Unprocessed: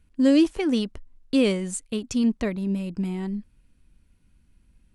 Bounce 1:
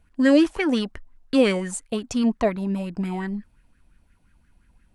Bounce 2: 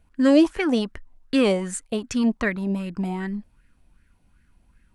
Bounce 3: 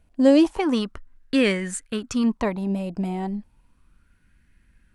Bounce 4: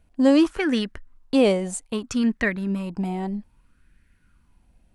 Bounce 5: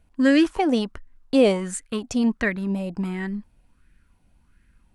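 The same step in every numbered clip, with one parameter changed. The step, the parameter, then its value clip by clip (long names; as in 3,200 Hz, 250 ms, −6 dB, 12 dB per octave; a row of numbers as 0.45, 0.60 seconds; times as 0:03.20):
auto-filter bell, speed: 5.7, 2.6, 0.33, 0.62, 1.4 Hertz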